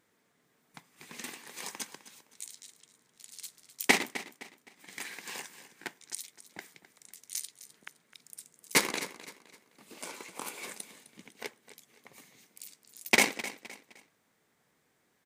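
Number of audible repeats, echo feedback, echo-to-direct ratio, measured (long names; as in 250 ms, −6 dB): 3, 34%, −14.5 dB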